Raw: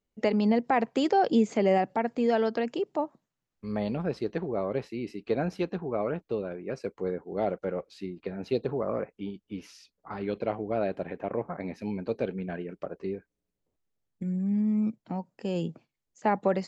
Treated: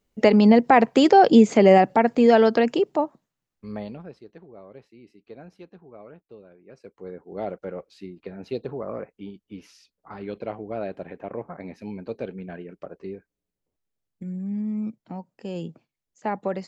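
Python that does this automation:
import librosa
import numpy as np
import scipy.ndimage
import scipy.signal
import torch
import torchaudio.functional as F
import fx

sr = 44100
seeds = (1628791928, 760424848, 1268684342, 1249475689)

y = fx.gain(x, sr, db=fx.line((2.71, 9.5), (3.78, -2.5), (4.23, -15.0), (6.61, -15.0), (7.34, -2.0)))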